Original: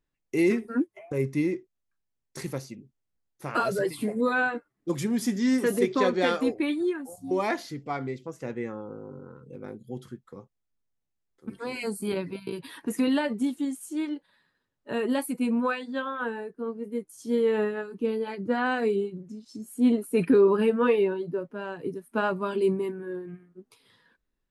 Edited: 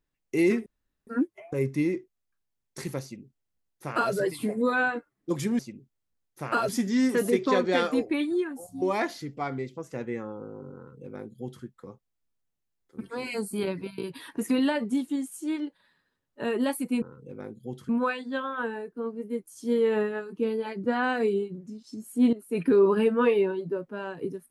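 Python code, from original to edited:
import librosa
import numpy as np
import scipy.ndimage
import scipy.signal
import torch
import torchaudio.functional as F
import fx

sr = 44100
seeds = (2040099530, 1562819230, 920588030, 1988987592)

y = fx.edit(x, sr, fx.insert_room_tone(at_s=0.66, length_s=0.41),
    fx.duplicate(start_s=2.62, length_s=1.1, to_s=5.18),
    fx.duplicate(start_s=9.26, length_s=0.87, to_s=15.51),
    fx.fade_in_from(start_s=19.95, length_s=0.52, floor_db=-13.0), tone=tone)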